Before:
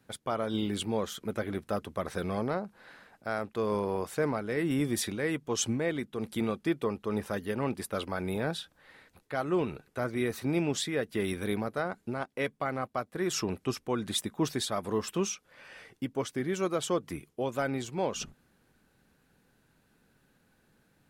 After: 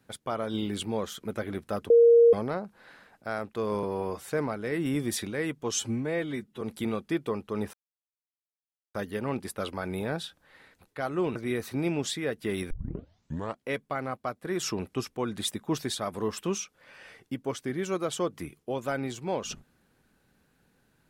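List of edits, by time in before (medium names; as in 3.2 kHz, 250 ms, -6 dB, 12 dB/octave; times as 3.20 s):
1.90–2.33 s: bleep 468 Hz -13.5 dBFS
3.83–4.13 s: stretch 1.5×
5.58–6.17 s: stretch 1.5×
7.29 s: insert silence 1.21 s
9.70–10.06 s: delete
11.41 s: tape start 0.95 s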